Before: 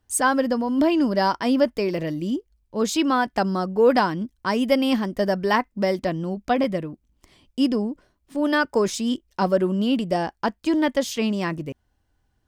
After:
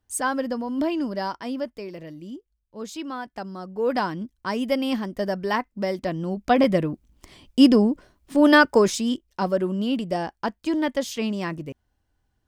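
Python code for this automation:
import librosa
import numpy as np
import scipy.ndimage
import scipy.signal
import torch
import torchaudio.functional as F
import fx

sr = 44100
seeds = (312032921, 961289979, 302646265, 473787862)

y = fx.gain(x, sr, db=fx.line((0.83, -5.0), (1.89, -12.0), (3.55, -12.0), (4.06, -4.0), (5.94, -4.0), (6.89, 6.5), (8.56, 6.5), (9.28, -3.0)))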